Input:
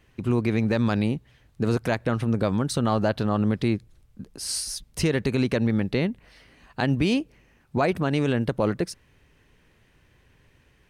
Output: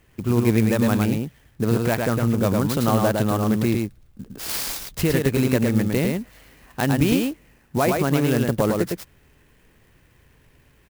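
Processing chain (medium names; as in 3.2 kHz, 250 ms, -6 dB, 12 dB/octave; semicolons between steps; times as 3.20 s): on a send: delay 108 ms -3.5 dB; on the sum: sampling jitter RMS 0.042 ms; trim +2 dB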